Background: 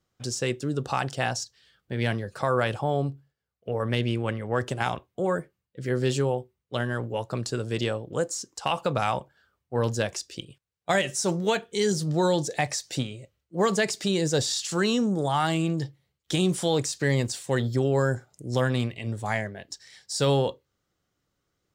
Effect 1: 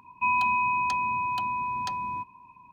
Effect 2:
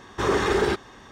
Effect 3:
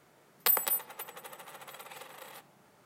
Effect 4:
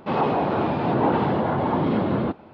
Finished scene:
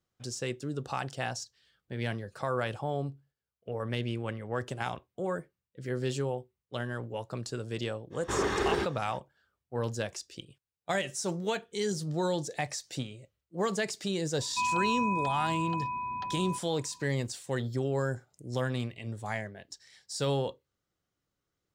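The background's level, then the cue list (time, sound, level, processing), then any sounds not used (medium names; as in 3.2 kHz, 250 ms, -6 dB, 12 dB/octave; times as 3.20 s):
background -7 dB
8.10 s: add 2 -7 dB, fades 0.05 s
14.35 s: add 1 -4 dB + distance through air 230 m
not used: 3, 4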